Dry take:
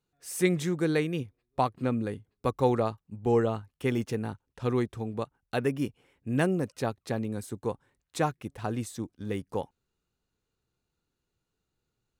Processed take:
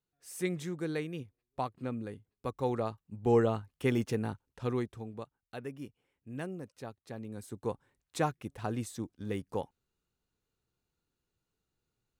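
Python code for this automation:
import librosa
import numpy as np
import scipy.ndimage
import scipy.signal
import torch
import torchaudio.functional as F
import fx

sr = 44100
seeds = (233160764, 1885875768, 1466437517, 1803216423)

y = fx.gain(x, sr, db=fx.line((2.57, -8.5), (3.34, -1.0), (4.32, -1.0), (5.57, -13.5), (7.05, -13.5), (7.7, -3.0)))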